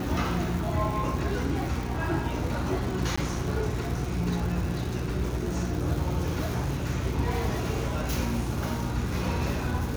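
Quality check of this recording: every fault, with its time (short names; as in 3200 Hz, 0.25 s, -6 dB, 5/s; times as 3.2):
crackle 270/s -33 dBFS
hum 60 Hz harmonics 6 -33 dBFS
3.16–3.17 gap 15 ms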